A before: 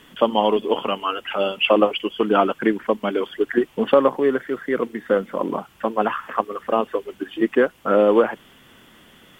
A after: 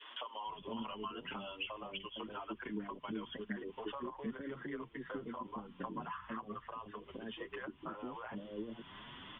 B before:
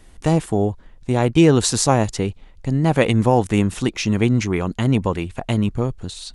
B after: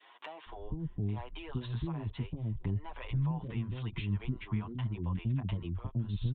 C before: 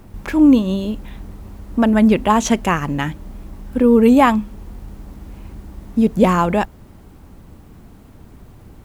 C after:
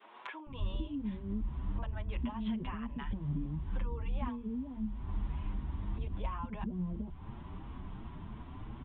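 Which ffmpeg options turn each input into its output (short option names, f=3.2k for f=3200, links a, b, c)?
-filter_complex "[0:a]alimiter=limit=-11dB:level=0:latency=1:release=25,acompressor=threshold=-23dB:ratio=4,equalizer=f=500:t=o:w=0.33:g=-5,equalizer=f=1k:t=o:w=0.33:g=11,equalizer=f=3.15k:t=o:w=0.33:g=3,acrossover=split=470[a][b];[a]adelay=460[c];[c][b]amix=inputs=2:normalize=0,aresample=8000,aresample=44100,acrossover=split=140[d][e];[e]acompressor=threshold=-46dB:ratio=2.5[f];[d][f]amix=inputs=2:normalize=0,adynamicequalizer=threshold=0.00224:dfrequency=930:dqfactor=1.2:tfrequency=930:tqfactor=1.2:attack=5:release=100:ratio=0.375:range=2:mode=cutabove:tftype=bell,asplit=2[g][h];[h]adelay=7.2,afreqshift=2.9[i];[g][i]amix=inputs=2:normalize=1,volume=1.5dB"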